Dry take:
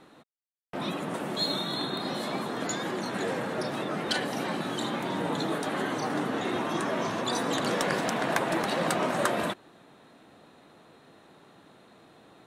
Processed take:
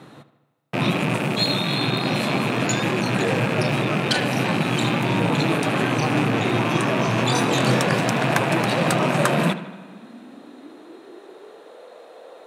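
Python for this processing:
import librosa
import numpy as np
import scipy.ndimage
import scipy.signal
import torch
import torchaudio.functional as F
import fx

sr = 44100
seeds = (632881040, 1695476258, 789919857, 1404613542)

p1 = fx.rattle_buzz(x, sr, strikes_db=-43.0, level_db=-24.0)
p2 = fx.doubler(p1, sr, ms=23.0, db=-2.5, at=(7.15, 7.8))
p3 = p2 + fx.echo_filtered(p2, sr, ms=77, feedback_pct=62, hz=4100.0, wet_db=-14, dry=0)
p4 = fx.rev_spring(p3, sr, rt60_s=2.1, pass_ms=(34,), chirp_ms=35, drr_db=19.0)
p5 = fx.rider(p4, sr, range_db=10, speed_s=0.5)
p6 = p4 + (p5 * 10.0 ** (1.0 / 20.0))
y = fx.filter_sweep_highpass(p6, sr, from_hz=120.0, to_hz=510.0, start_s=8.9, end_s=11.84, q=5.4)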